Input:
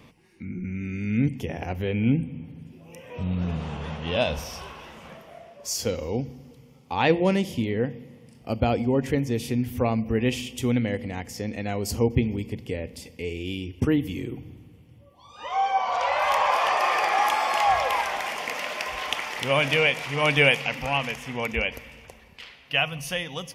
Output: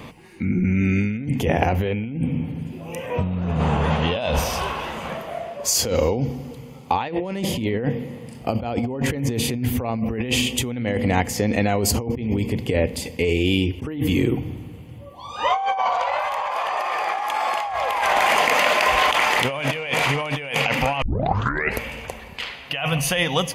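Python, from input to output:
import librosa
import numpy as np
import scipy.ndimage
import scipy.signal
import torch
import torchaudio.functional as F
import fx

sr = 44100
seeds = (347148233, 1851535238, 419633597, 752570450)

y = fx.peak_eq(x, sr, hz=4000.0, db=-5.5, octaves=1.2, at=(3.06, 3.91))
y = fx.edit(y, sr, fx.tape_start(start_s=21.02, length_s=0.79), tone=tone)
y = fx.notch(y, sr, hz=5500.0, q=7.8)
y = fx.over_compress(y, sr, threshold_db=-31.0, ratio=-1.0)
y = fx.peak_eq(y, sr, hz=840.0, db=3.5, octaves=1.5)
y = F.gain(torch.from_numpy(y), 7.5).numpy()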